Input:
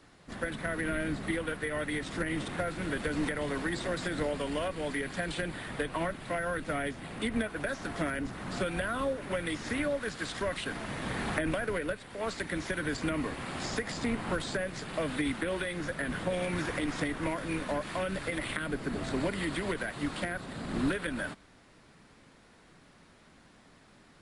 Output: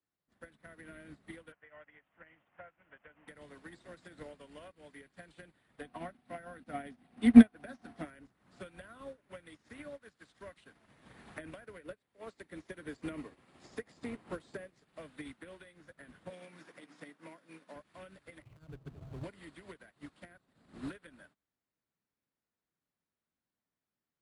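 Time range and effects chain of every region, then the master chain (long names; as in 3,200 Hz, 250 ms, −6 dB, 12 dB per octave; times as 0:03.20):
0:01.52–0:03.28: Butterworth low-pass 3,100 Hz 72 dB per octave + low shelf with overshoot 490 Hz −8 dB, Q 1.5
0:05.81–0:08.05: parametric band 7,100 Hz −6 dB 0.31 octaves + hollow resonant body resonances 240/730 Hz, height 14 dB, ringing for 80 ms
0:11.84–0:14.85: notch filter 1,500 Hz, Q 26 + dynamic equaliser 380 Hz, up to +5 dB, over −44 dBFS, Q 1.2
0:16.30–0:17.76: high-pass filter 160 Hz 24 dB per octave + parametric band 5,100 Hz +3 dB 0.37 octaves + mains-hum notches 50/100/150/200/250/300/350 Hz
0:18.42–0:19.24: running median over 25 samples + low shelf with overshoot 170 Hz +7 dB, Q 3
whole clip: high-pass filter 44 Hz; expander for the loud parts 2.5 to 1, over −43 dBFS; level +6 dB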